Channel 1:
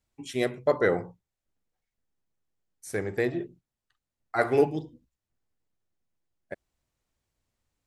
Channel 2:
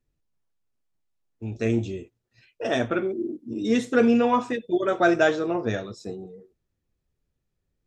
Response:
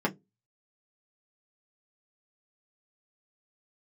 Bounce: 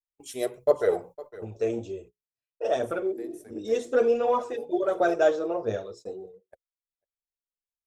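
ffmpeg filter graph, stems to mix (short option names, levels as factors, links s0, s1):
-filter_complex "[0:a]aemphasis=mode=production:type=50kf,bandreject=f=520:w=12,volume=0.596,asplit=2[s0][s1];[s1]volume=0.15[s2];[1:a]bandreject=f=60:t=h:w=6,bandreject=f=120:t=h:w=6,bandreject=f=180:t=h:w=6,bandreject=f=240:t=h:w=6,bandreject=f=300:t=h:w=6,bandreject=f=360:t=h:w=6,bandreject=f=420:t=h:w=6,bandreject=f=480:t=h:w=6,volume=0.596,asplit=2[s3][s4];[s4]apad=whole_len=346886[s5];[s0][s5]sidechaincompress=threshold=0.00631:ratio=8:attack=31:release=1040[s6];[s2]aecho=0:1:504:1[s7];[s6][s3][s7]amix=inputs=3:normalize=0,agate=range=0.0282:threshold=0.00447:ratio=16:detection=peak,equalizer=f=125:t=o:w=1:g=-6,equalizer=f=250:t=o:w=1:g=-9,equalizer=f=500:t=o:w=1:g=9,equalizer=f=2000:t=o:w=1:g=-8,equalizer=f=4000:t=o:w=1:g=-3,aphaser=in_gain=1:out_gain=1:delay=4.1:decay=0.4:speed=1.4:type=triangular"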